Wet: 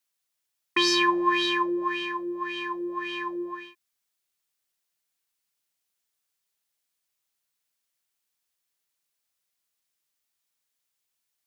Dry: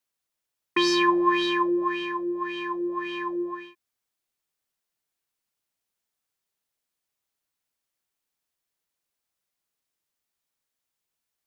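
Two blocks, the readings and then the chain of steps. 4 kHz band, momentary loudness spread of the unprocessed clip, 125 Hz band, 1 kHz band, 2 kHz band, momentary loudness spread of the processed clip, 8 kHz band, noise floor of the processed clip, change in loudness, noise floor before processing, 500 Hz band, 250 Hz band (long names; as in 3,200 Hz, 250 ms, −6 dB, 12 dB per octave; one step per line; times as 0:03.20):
+3.0 dB, 10 LU, −4.0 dB, −1.0 dB, +1.5 dB, 12 LU, can't be measured, −81 dBFS, −0.5 dB, −85 dBFS, −3.5 dB, −3.5 dB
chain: tilt shelving filter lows −4 dB, about 1,400 Hz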